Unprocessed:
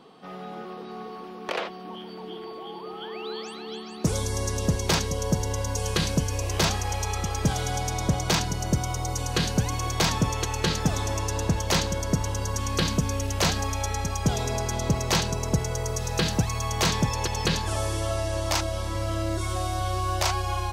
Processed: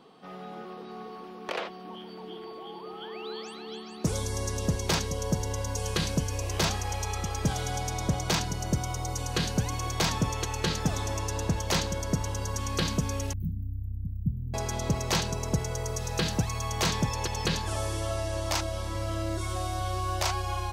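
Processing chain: 13.33–14.54 s: inverse Chebyshev band-stop 530–9800 Hz, stop band 50 dB; trim -3.5 dB

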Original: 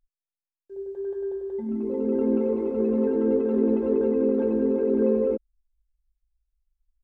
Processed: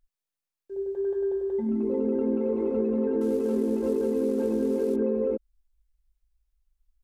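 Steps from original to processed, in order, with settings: 3.21–4.96 s: CVSD coder 64 kbps; compression, threshold -26 dBFS, peak gain reduction 8.5 dB; trim +3.5 dB

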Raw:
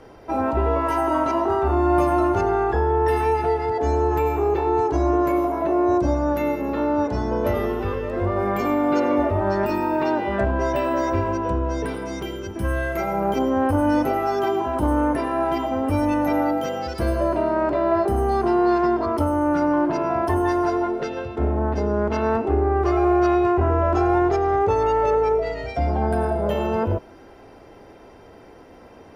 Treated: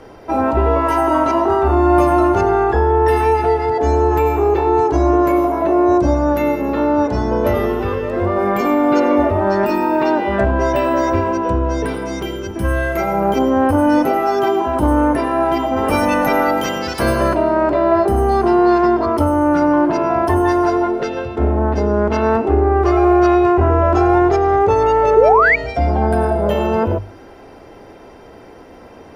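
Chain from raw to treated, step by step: 15.76–17.33 s: spectral peaks clipped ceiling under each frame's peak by 15 dB; hum notches 50/100/150 Hz; 25.16–25.56 s: painted sound rise 390–2400 Hz -18 dBFS; trim +6 dB

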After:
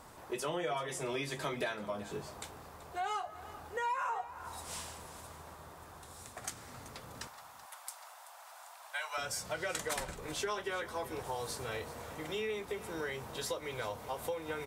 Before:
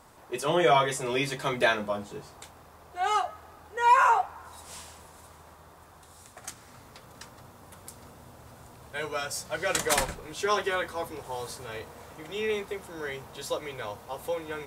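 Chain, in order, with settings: 7.27–9.18 s: steep high-pass 660 Hz 48 dB/octave; compression 5:1, threshold -36 dBFS, peak gain reduction 18.5 dB; delay 382 ms -16.5 dB; trim +1 dB

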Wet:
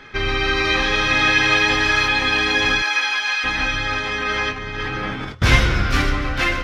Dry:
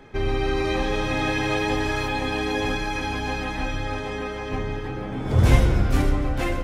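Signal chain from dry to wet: 2.81–3.43 s: high-pass 510 Hz -> 1.2 kHz 12 dB/octave; 4.22–5.42 s: compressor with a negative ratio -31 dBFS, ratio -1; high-order bell 2.6 kHz +12.5 dB 2.7 oct

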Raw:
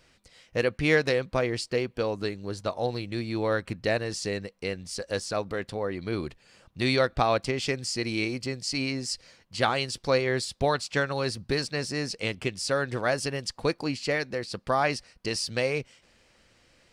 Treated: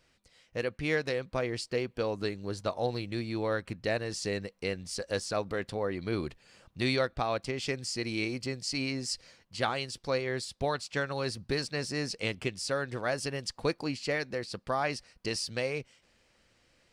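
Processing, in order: gain riding within 3 dB 0.5 s; trim -4.5 dB

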